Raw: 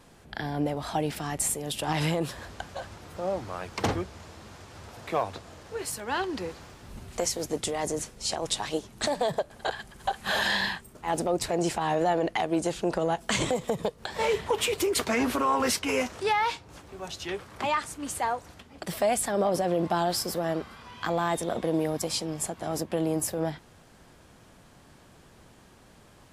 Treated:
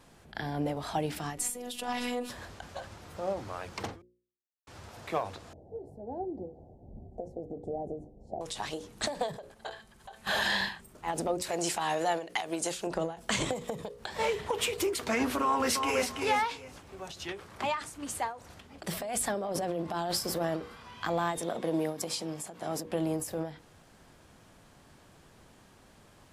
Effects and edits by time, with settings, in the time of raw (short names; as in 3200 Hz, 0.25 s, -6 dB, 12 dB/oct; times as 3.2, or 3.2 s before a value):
1.38–2.3 robotiser 245 Hz
4.02–4.67 mute
5.53–8.41 elliptic low-pass 750 Hz
9.54–10.27 resonator 220 Hz, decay 0.31 s
11.42–12.87 tilt +2.5 dB/oct
15.42–16.07 echo throw 0.33 s, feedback 20%, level -5 dB
18.5–20.6 negative-ratio compressor -29 dBFS
21.39–22.86 HPF 140 Hz
whole clip: notches 60/120/180/240/300/360/420/480/540 Hz; ending taper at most 130 dB/s; gain -2.5 dB